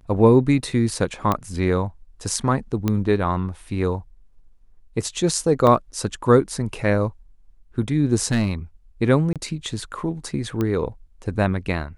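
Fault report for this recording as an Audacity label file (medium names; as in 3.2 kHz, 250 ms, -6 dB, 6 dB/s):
1.320000	1.320000	pop -8 dBFS
2.880000	2.880000	pop -9 dBFS
5.670000	5.670000	dropout 2.1 ms
8.310000	8.520000	clipped -14.5 dBFS
9.330000	9.360000	dropout 27 ms
10.610000	10.610000	pop -12 dBFS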